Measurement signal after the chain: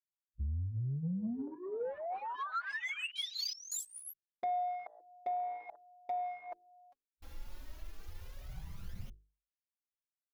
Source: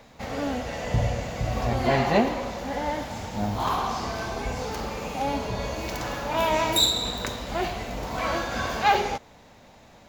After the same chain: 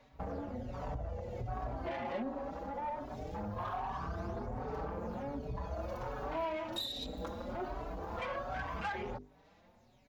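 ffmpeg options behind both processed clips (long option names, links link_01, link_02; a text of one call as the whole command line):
ffmpeg -i in.wav -filter_complex "[0:a]aphaser=in_gain=1:out_gain=1:delay=3.7:decay=0.51:speed=0.21:type=sinusoidal,afwtdn=0.0398,equalizer=frequency=8300:width_type=o:width=0.36:gain=-9.5,acompressor=threshold=-34dB:ratio=5,bandreject=frequency=50:width_type=h:width=6,bandreject=frequency=100:width_type=h:width=6,bandreject=frequency=150:width_type=h:width=6,bandreject=frequency=200:width_type=h:width=6,bandreject=frequency=250:width_type=h:width=6,bandreject=frequency=300:width_type=h:width=6,bandreject=frequency=350:width_type=h:width=6,bandreject=frequency=400:width_type=h:width=6,bandreject=frequency=450:width_type=h:width=6,asoftclip=type=tanh:threshold=-31.5dB,asplit=2[link_01][link_02];[link_02]adelay=4.9,afreqshift=1.3[link_03];[link_01][link_03]amix=inputs=2:normalize=1,volume=2.5dB" out.wav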